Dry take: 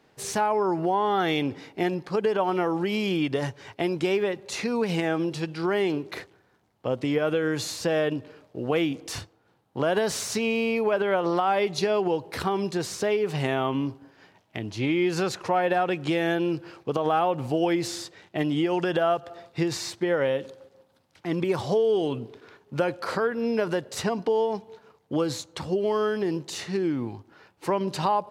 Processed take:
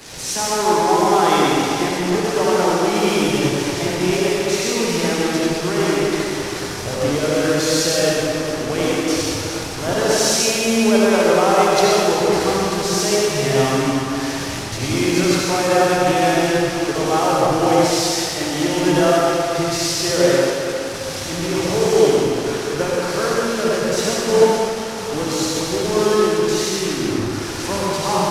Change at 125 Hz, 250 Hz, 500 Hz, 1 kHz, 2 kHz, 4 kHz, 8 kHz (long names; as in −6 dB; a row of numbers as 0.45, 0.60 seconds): +8.0, +8.0, +8.5, +8.5, +9.0, +13.0, +17.0 decibels